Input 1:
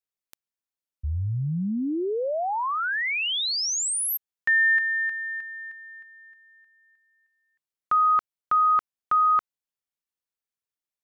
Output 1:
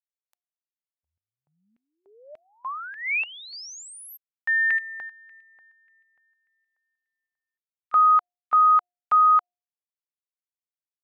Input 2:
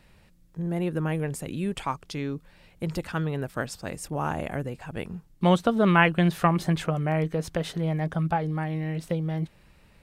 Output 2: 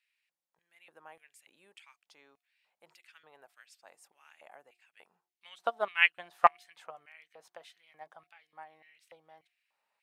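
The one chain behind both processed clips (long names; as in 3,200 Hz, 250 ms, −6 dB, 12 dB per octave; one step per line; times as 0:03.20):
auto-filter high-pass square 1.7 Hz 800–2,300 Hz
hum removal 356.4 Hz, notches 2
expander for the loud parts 2.5 to 1, over −29 dBFS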